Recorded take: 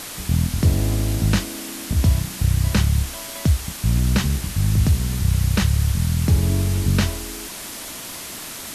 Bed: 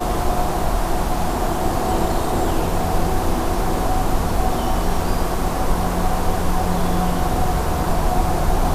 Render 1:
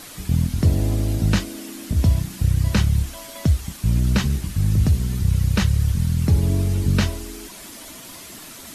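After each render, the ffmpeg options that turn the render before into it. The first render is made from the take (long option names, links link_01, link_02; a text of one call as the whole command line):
ffmpeg -i in.wav -af "afftdn=noise_reduction=8:noise_floor=-34" out.wav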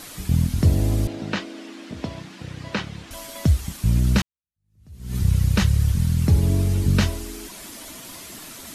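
ffmpeg -i in.wav -filter_complex "[0:a]asettb=1/sr,asplit=3[link_01][link_02][link_03];[link_01]atrim=end=1.074[link_04];[link_02]atrim=start=1.07:end=3.11,asetpts=PTS-STARTPTS,afade=type=in:duration=0.004:curve=qsin,afade=type=out:start_time=2.036:duration=0.004:curve=qsin,highpass=290,lowpass=3700[link_05];[link_03]atrim=start=3.106[link_06];[link_04][link_05]acrossfade=duration=0.004:curve1=hsin:curve2=qsin[link_07];[link_07][link_06]acrossfade=duration=0.004:curve1=qsin:curve2=hsin,asplit=2[link_08][link_09];[link_08]atrim=end=4.22,asetpts=PTS-STARTPTS,afade=type=out:start_time=4.216:duration=0.004:curve=hsin[link_10];[link_09]atrim=start=4.22,asetpts=PTS-STARTPTS,afade=type=in:duration=0.94:curve=exp[link_11];[link_10][link_11]concat=n=2:v=0:a=1" out.wav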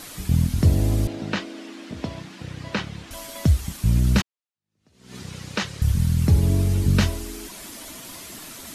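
ffmpeg -i in.wav -filter_complex "[0:a]asettb=1/sr,asplit=3[link_01][link_02][link_03];[link_01]atrim=end=4.214[link_04];[link_02]atrim=start=4.21:end=5.82,asetpts=PTS-STARTPTS,afade=type=in:duration=0.004:curve=qsin,afade=type=out:start_time=1.606:duration=0.004:curve=qsin,highpass=320,lowpass=6400[link_05];[link_03]atrim=start=5.816[link_06];[link_04][link_05]acrossfade=duration=0.004:curve1=hsin:curve2=qsin[link_07];[link_07][link_06]acrossfade=duration=0.004:curve1=qsin:curve2=hsin" out.wav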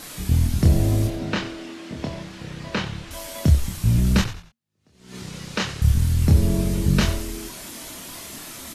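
ffmpeg -i in.wav -filter_complex "[0:a]asplit=2[link_01][link_02];[link_02]adelay=27,volume=-4dB[link_03];[link_01][link_03]amix=inputs=2:normalize=0,asplit=4[link_04][link_05][link_06][link_07];[link_05]adelay=91,afreqshift=-78,volume=-12dB[link_08];[link_06]adelay=182,afreqshift=-156,volume=-21.9dB[link_09];[link_07]adelay=273,afreqshift=-234,volume=-31.8dB[link_10];[link_04][link_08][link_09][link_10]amix=inputs=4:normalize=0" out.wav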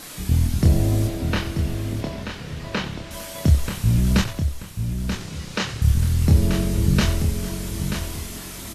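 ffmpeg -i in.wav -af "aecho=1:1:934|1868|2802:0.422|0.11|0.0285" out.wav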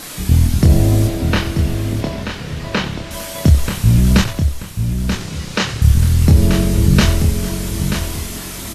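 ffmpeg -i in.wav -af "volume=7dB,alimiter=limit=-1dB:level=0:latency=1" out.wav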